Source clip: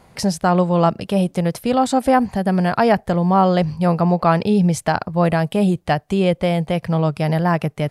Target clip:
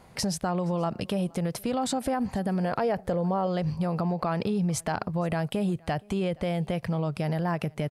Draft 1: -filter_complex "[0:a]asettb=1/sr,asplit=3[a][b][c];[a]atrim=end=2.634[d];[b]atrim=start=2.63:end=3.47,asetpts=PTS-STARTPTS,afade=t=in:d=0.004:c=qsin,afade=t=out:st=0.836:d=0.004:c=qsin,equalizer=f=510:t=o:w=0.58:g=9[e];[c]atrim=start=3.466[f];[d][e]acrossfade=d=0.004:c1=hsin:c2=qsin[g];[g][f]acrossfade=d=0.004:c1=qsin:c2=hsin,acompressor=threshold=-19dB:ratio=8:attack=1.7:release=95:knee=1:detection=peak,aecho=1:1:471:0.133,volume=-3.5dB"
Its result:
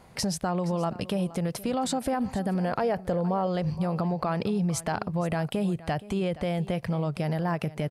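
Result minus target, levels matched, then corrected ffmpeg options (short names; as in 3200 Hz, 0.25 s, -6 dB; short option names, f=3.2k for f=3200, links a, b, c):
echo-to-direct +9 dB
-filter_complex "[0:a]asettb=1/sr,asplit=3[a][b][c];[a]atrim=end=2.634[d];[b]atrim=start=2.63:end=3.47,asetpts=PTS-STARTPTS,afade=t=in:d=0.004:c=qsin,afade=t=out:st=0.836:d=0.004:c=qsin,equalizer=f=510:t=o:w=0.58:g=9[e];[c]atrim=start=3.466[f];[d][e]acrossfade=d=0.004:c1=hsin:c2=qsin[g];[g][f]acrossfade=d=0.004:c1=qsin:c2=hsin,acompressor=threshold=-19dB:ratio=8:attack=1.7:release=95:knee=1:detection=peak,aecho=1:1:471:0.0473,volume=-3.5dB"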